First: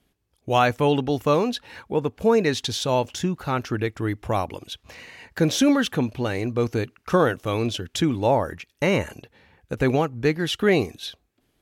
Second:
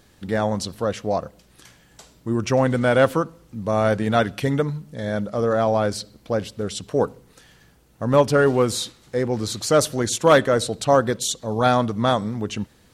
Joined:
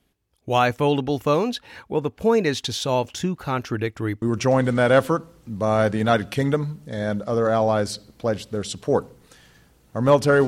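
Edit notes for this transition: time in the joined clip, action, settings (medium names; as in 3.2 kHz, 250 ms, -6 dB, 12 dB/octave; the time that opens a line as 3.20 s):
first
4.22 s: go over to second from 2.28 s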